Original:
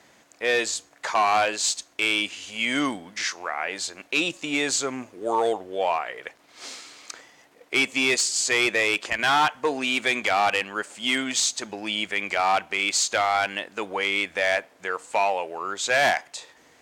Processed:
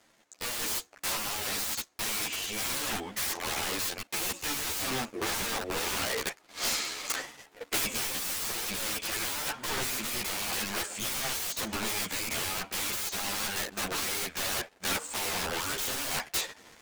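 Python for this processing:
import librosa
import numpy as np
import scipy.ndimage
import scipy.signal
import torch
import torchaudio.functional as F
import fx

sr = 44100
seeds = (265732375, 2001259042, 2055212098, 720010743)

y = fx.leveller(x, sr, passes=3)
y = (np.mod(10.0 ** (20.0 / 20.0) * y + 1.0, 2.0) - 1.0) / 10.0 ** (20.0 / 20.0)
y = fx.rider(y, sr, range_db=10, speed_s=0.5)
y = fx.ensemble(y, sr)
y = y * librosa.db_to_amplitude(-3.0)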